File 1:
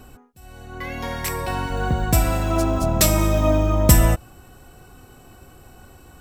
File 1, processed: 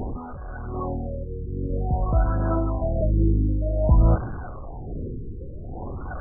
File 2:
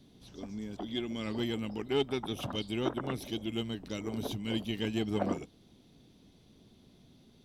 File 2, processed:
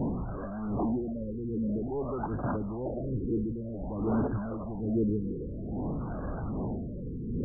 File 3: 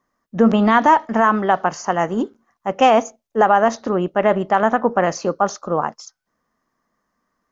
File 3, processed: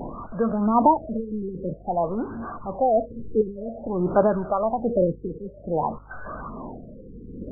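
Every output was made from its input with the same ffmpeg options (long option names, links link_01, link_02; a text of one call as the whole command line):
ffmpeg -i in.wav -af "aeval=exprs='val(0)+0.5*0.0841*sgn(val(0))':channel_layout=same,aeval=exprs='val(0)+0.00631*(sin(2*PI*50*n/s)+sin(2*PI*2*50*n/s)/2+sin(2*PI*3*50*n/s)/3+sin(2*PI*4*50*n/s)/4+sin(2*PI*5*50*n/s)/5)':channel_layout=same,tremolo=f=0.96:d=0.31,aphaser=in_gain=1:out_gain=1:delay=1.8:decay=0.48:speed=1.2:type=sinusoidal,afftfilt=real='re*lt(b*sr/1024,490*pow(1700/490,0.5+0.5*sin(2*PI*0.52*pts/sr)))':imag='im*lt(b*sr/1024,490*pow(1700/490,0.5+0.5*sin(2*PI*0.52*pts/sr)))':win_size=1024:overlap=0.75,volume=-6.5dB" out.wav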